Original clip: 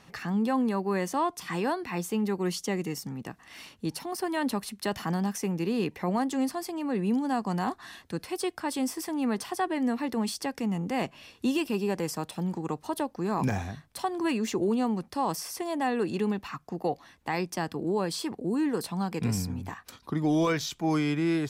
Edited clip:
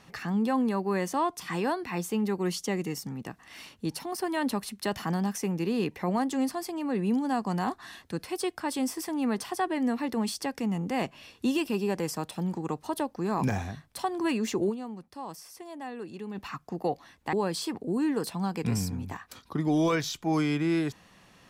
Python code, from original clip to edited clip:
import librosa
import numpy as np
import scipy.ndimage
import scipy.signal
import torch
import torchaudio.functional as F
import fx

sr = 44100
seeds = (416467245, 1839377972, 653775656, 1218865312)

y = fx.edit(x, sr, fx.fade_down_up(start_s=14.69, length_s=1.69, db=-11.0, fade_s=0.25, curve='exp'),
    fx.cut(start_s=17.33, length_s=0.57), tone=tone)